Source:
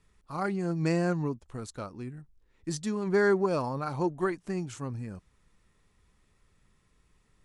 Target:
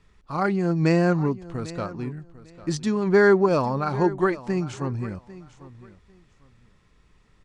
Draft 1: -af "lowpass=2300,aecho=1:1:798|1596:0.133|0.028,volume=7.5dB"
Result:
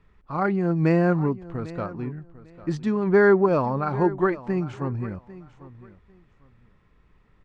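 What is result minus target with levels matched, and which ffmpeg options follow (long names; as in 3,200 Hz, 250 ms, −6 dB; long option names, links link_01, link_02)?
4,000 Hz band −9.5 dB
-af "lowpass=5600,aecho=1:1:798|1596:0.133|0.028,volume=7.5dB"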